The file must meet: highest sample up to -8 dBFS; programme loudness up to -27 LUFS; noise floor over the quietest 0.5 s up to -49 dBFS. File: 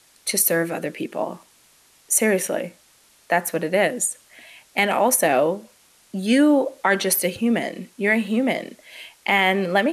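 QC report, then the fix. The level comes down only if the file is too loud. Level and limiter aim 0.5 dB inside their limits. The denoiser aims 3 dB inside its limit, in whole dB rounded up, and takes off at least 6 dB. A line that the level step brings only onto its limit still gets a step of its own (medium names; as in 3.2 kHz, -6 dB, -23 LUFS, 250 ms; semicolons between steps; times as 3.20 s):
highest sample -5.5 dBFS: fail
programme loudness -21.0 LUFS: fail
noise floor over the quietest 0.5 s -56 dBFS: pass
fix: trim -6.5 dB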